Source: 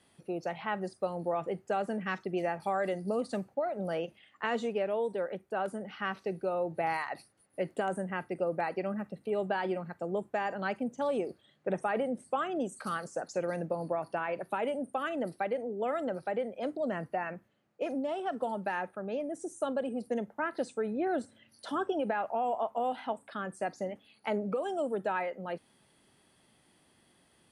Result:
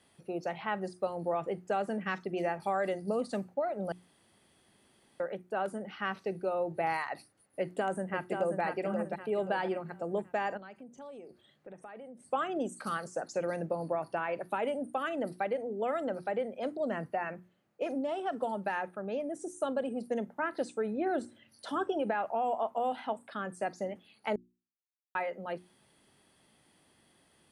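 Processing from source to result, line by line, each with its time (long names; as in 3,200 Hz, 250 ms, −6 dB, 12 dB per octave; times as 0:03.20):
0:03.92–0:05.20: fill with room tone
0:07.60–0:08.62: delay throw 530 ms, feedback 40%, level −5 dB
0:10.57–0:12.26: downward compressor 3 to 1, threshold −50 dBFS
0:24.36–0:25.15: silence
whole clip: mains-hum notches 60/120/180/240/300/360 Hz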